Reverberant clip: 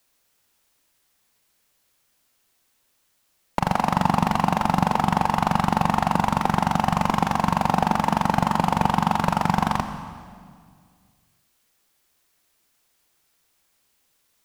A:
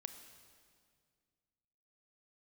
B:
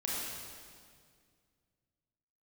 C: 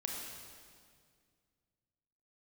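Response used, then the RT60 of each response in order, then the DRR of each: A; 2.0, 2.0, 2.0 s; 8.0, -6.0, -1.0 dB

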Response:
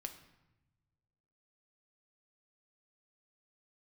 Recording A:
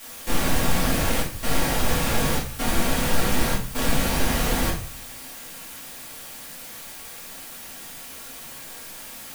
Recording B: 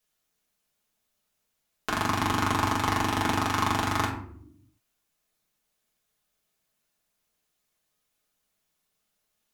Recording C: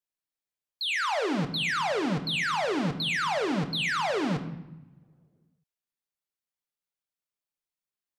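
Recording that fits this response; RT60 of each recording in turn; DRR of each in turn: C; 0.45, 0.65, 1.0 s; -9.5, -5.0, 6.0 dB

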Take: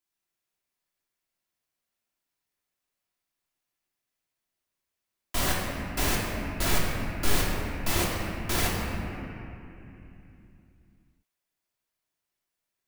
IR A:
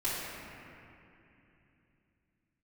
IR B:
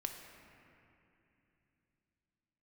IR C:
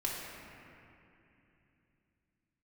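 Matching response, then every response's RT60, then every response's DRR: C; 2.9, 2.9, 2.9 s; -12.0, 3.0, -5.0 dB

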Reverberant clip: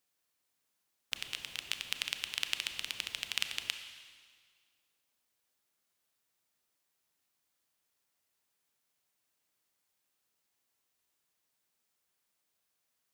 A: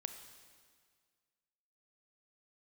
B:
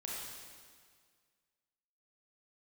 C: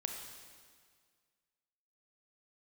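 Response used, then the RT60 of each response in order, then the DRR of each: A; 1.8, 1.8, 1.8 s; 7.5, -5.0, 2.5 dB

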